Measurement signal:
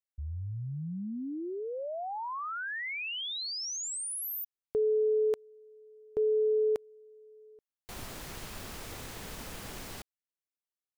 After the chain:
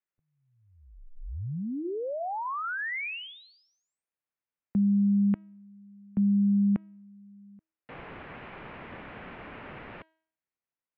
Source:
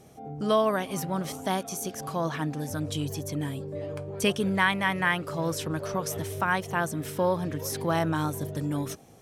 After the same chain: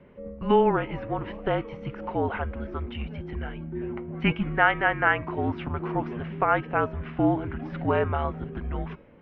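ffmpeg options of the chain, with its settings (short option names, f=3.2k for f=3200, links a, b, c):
-af "highpass=f=300:t=q:w=0.5412,highpass=f=300:t=q:w=1.307,lowpass=f=2.8k:t=q:w=0.5176,lowpass=f=2.8k:t=q:w=0.7071,lowpass=f=2.8k:t=q:w=1.932,afreqshift=-230,bandreject=f=319.6:t=h:w=4,bandreject=f=639.2:t=h:w=4,bandreject=f=958.8:t=h:w=4,bandreject=f=1.2784k:t=h:w=4,bandreject=f=1.598k:t=h:w=4,bandreject=f=1.9176k:t=h:w=4,bandreject=f=2.2372k:t=h:w=4,bandreject=f=2.5568k:t=h:w=4,bandreject=f=2.8764k:t=h:w=4,bandreject=f=3.196k:t=h:w=4,bandreject=f=3.5156k:t=h:w=4,bandreject=f=3.8352k:t=h:w=4,bandreject=f=4.1548k:t=h:w=4,bandreject=f=4.4744k:t=h:w=4,bandreject=f=4.794k:t=h:w=4,bandreject=f=5.1136k:t=h:w=4,bandreject=f=5.4332k:t=h:w=4,bandreject=f=5.7528k:t=h:w=4,bandreject=f=6.0724k:t=h:w=4,bandreject=f=6.392k:t=h:w=4,bandreject=f=6.7116k:t=h:w=4,bandreject=f=7.0312k:t=h:w=4,bandreject=f=7.3508k:t=h:w=4,bandreject=f=7.6704k:t=h:w=4,bandreject=f=7.99k:t=h:w=4,bandreject=f=8.3096k:t=h:w=4,bandreject=f=8.6292k:t=h:w=4,volume=4dB"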